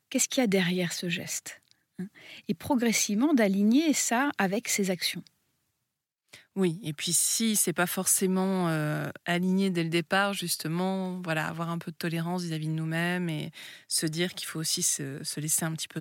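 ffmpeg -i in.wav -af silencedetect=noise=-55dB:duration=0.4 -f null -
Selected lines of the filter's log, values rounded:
silence_start: 5.28
silence_end: 6.29 | silence_duration: 1.01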